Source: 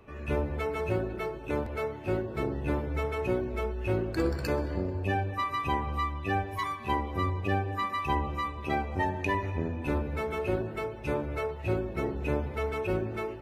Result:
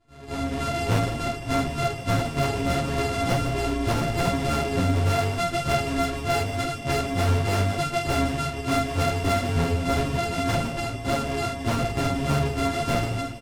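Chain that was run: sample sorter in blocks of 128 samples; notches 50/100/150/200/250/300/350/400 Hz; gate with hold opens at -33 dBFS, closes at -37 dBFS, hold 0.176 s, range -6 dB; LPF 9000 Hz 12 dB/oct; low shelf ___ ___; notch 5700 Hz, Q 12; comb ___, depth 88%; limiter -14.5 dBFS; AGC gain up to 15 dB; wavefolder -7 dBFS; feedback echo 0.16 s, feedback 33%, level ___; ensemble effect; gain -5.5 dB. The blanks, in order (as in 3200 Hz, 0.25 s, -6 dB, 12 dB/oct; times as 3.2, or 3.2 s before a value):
350 Hz, +9.5 dB, 7.3 ms, -12.5 dB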